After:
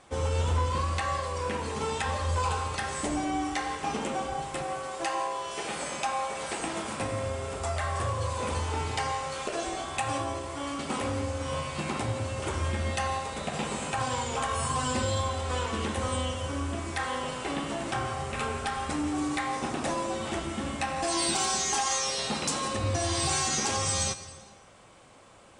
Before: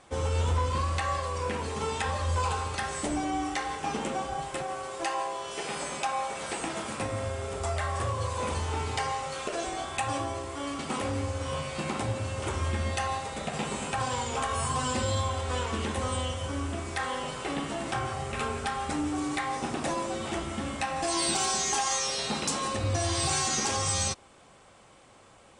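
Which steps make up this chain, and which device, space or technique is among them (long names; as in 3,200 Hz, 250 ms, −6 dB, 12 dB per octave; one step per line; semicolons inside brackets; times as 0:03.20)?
compressed reverb return (on a send at −5 dB: convolution reverb RT60 0.90 s, pre-delay 75 ms + downward compressor, threshold −34 dBFS, peak gain reduction 9.5 dB)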